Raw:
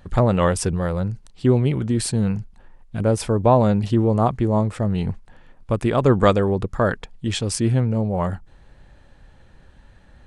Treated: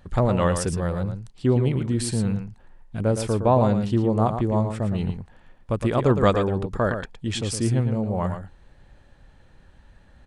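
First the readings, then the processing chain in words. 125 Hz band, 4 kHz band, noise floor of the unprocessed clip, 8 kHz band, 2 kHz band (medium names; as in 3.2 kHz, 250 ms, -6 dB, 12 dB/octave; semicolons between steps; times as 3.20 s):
-2.5 dB, -3.0 dB, -51 dBFS, -3.0 dB, -3.0 dB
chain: delay 113 ms -8 dB; trim -3.5 dB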